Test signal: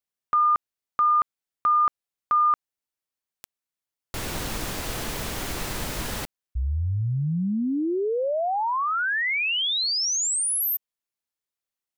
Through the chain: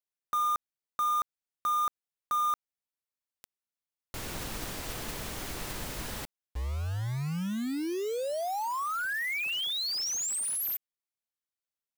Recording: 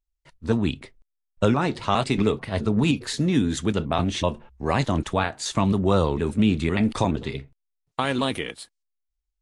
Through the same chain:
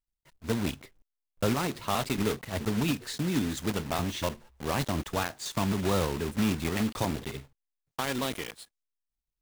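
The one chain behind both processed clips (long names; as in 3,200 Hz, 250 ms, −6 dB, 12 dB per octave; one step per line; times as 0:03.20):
one scale factor per block 3 bits
level −7.5 dB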